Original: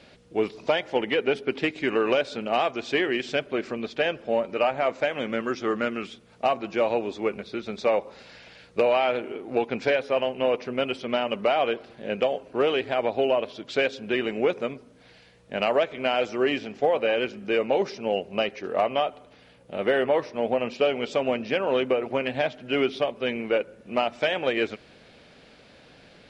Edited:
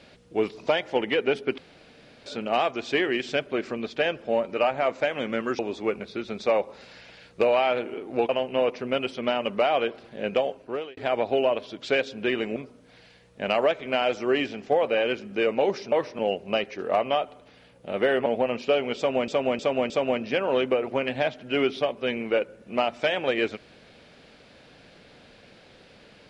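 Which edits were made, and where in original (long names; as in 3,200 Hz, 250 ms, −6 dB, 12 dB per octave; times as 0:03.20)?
0:01.58–0:02.26: fill with room tone
0:05.59–0:06.97: remove
0:09.67–0:10.15: remove
0:12.31–0:12.83: fade out
0:14.42–0:14.68: remove
0:20.11–0:20.38: move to 0:18.04
0:21.09–0:21.40: repeat, 4 plays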